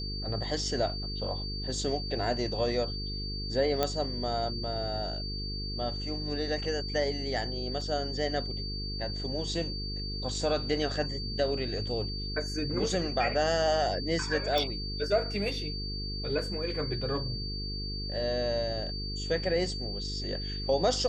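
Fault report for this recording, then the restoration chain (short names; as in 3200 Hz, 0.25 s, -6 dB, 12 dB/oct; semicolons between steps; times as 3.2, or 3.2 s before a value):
buzz 50 Hz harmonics 9 -37 dBFS
tone 4600 Hz -37 dBFS
3.83 pop -12 dBFS
7.81 gap 3.2 ms
14.58 pop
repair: de-click; notch 4600 Hz, Q 30; de-hum 50 Hz, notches 9; interpolate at 7.81, 3.2 ms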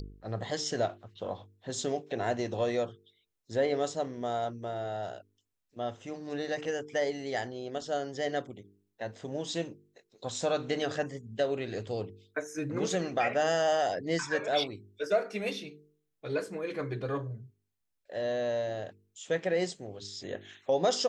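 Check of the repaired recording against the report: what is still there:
none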